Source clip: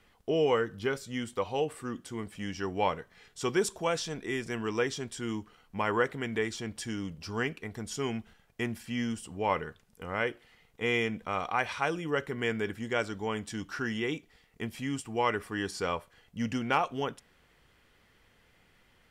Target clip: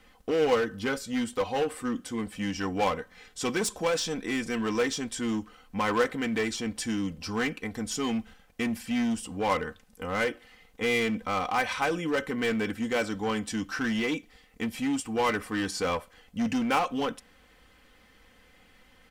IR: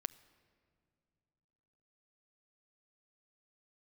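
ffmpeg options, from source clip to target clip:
-filter_complex "[0:a]aecho=1:1:3.9:0.61,asplit=2[a][b];[b]aeval=exprs='0.0335*(abs(mod(val(0)/0.0335+3,4)-2)-1)':c=same,volume=-3.5dB[c];[a][c]amix=inputs=2:normalize=0"

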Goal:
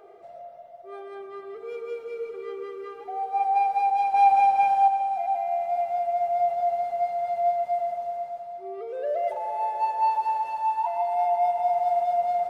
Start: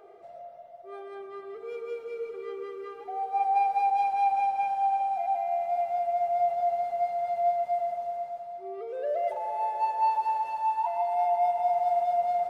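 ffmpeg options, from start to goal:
-filter_complex "[0:a]asettb=1/sr,asplit=3[a][b][c];[a]atrim=end=4.144[d];[b]atrim=start=4.14:end=4.88,asetpts=PTS-STARTPTS,afade=t=in:d=0.004:c=qsin,afade=t=out:st=0.736:d=0.004:c=qsin,acontrast=34[e];[c]atrim=start=4.876[f];[d][e]acrossfade=d=0.004:c1=hsin:c2=qsin[g];[g][f]acrossfade=d=0.004:c1=qsin:c2=hsin,volume=2dB"

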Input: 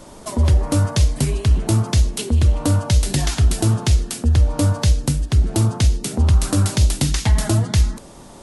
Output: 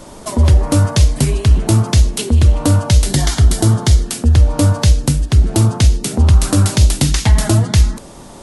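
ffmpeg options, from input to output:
-filter_complex "[0:a]asettb=1/sr,asplit=3[a][b][c];[a]atrim=end=3.094[d];[b]atrim=start=3.09:end=4.06,asetpts=PTS-STARTPTS,afade=t=in:d=0.004:c=qsin,afade=t=out:st=0.966:d=0.004:c=qsin,bandreject=f=2.6k:w=5.9[e];[c]atrim=start=4.056[f];[d][e]acrossfade=d=0.004:c1=hsin:c2=qsin[g];[g][f]acrossfade=d=0.004:c1=qsin:c2=hsin,volume=5dB"

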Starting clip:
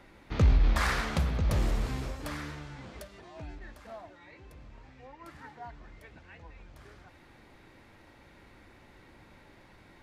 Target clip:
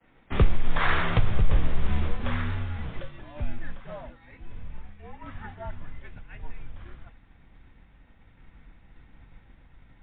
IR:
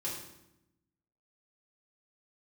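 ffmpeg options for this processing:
-filter_complex "[0:a]agate=range=-33dB:threshold=-47dB:ratio=3:detection=peak,asubboost=boost=5:cutoff=190,acompressor=threshold=-20dB:ratio=6,afreqshift=-53,asplit=2[a][b];[1:a]atrim=start_sample=2205,atrim=end_sample=3969[c];[b][c]afir=irnorm=-1:irlink=0,volume=-22dB[d];[a][d]amix=inputs=2:normalize=0,volume=6.5dB" -ar 8000 -c:a libmp3lame -b:a 24k

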